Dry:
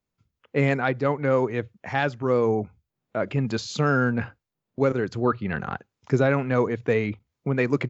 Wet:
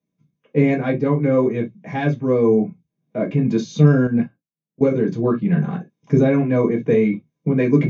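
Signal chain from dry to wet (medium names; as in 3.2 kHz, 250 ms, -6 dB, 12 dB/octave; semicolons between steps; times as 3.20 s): reverberation, pre-delay 3 ms, DRR -4 dB; 4.07–4.81 s: upward expansion 2.5:1, over -12 dBFS; trim -13.5 dB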